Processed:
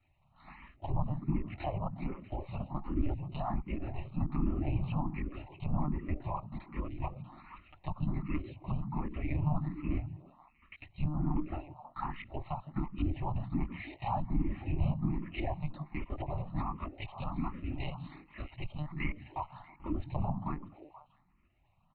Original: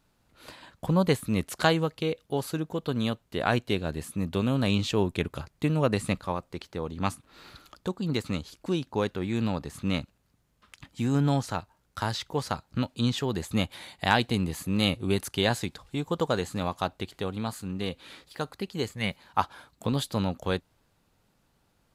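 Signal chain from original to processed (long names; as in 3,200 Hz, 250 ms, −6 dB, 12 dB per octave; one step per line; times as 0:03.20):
treble cut that deepens with the level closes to 1,000 Hz, closed at −23 dBFS
comb filter 4.2 ms, depth 58%
brickwall limiter −21 dBFS, peak gain reduction 11.5 dB
random phases in short frames
one-pitch LPC vocoder at 8 kHz 150 Hz
phaser with its sweep stopped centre 2,300 Hz, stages 8
on a send: echo through a band-pass that steps 160 ms, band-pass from 150 Hz, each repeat 1.4 octaves, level −4.5 dB
on the sum: frequency shifter mixed with the dry sound +1.3 Hz
level +1.5 dB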